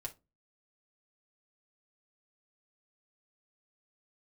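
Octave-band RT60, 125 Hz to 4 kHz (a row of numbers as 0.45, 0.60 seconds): 0.40, 0.35, 0.25, 0.25, 0.20, 0.20 seconds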